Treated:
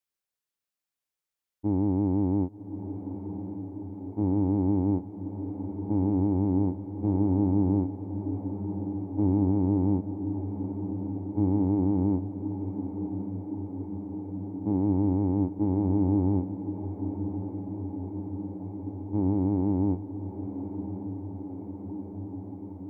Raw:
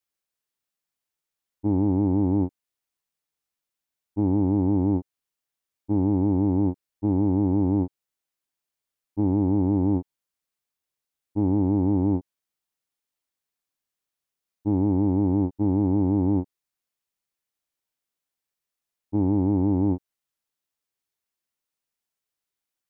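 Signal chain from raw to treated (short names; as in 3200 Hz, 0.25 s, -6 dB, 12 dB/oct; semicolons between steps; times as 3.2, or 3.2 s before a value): diffused feedback echo 1.122 s, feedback 77%, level -9.5 dB; gain -3.5 dB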